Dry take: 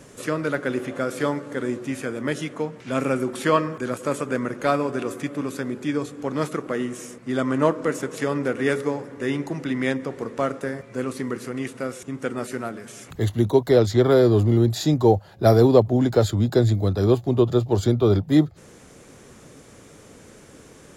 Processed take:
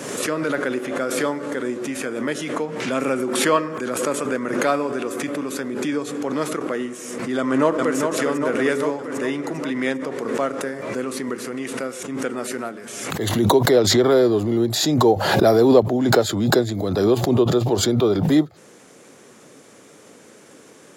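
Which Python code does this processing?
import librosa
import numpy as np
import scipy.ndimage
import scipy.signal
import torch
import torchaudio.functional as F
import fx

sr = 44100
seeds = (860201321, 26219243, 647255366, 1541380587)

y = fx.echo_throw(x, sr, start_s=7.38, length_s=0.59, ms=400, feedback_pct=65, wet_db=-5.5)
y = scipy.signal.sosfilt(scipy.signal.butter(2, 220.0, 'highpass', fs=sr, output='sos'), y)
y = fx.pre_swell(y, sr, db_per_s=39.0)
y = F.gain(torch.from_numpy(y), 1.0).numpy()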